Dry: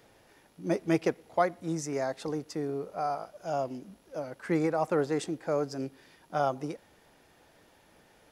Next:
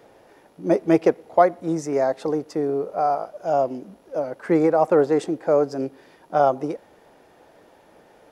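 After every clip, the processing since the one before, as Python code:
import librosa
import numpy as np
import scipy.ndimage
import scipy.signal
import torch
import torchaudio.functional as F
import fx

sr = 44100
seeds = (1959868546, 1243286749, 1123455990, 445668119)

y = fx.peak_eq(x, sr, hz=540.0, db=11.5, octaves=2.8)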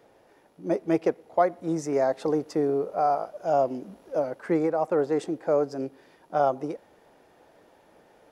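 y = fx.rider(x, sr, range_db=4, speed_s=0.5)
y = y * 10.0 ** (-4.0 / 20.0)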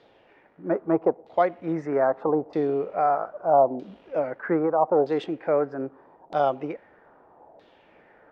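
y = fx.filter_lfo_lowpass(x, sr, shape='saw_down', hz=0.79, low_hz=720.0, high_hz=3900.0, q=2.9)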